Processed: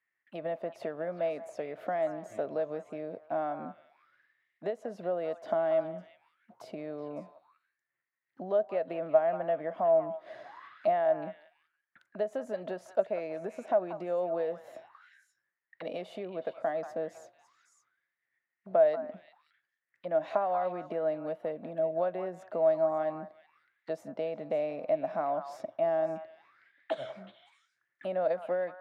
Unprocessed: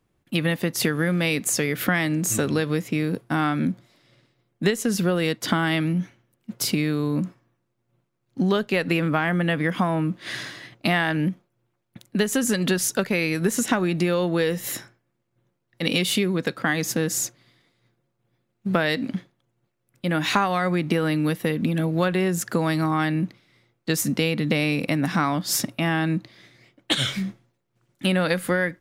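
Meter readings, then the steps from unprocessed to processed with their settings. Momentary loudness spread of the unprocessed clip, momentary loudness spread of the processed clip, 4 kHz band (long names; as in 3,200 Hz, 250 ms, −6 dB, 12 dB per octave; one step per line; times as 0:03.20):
7 LU, 16 LU, below −25 dB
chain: echo through a band-pass that steps 185 ms, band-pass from 1,100 Hz, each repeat 1.4 octaves, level −6.5 dB
envelope filter 640–1,900 Hz, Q 14, down, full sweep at −28.5 dBFS
level +9 dB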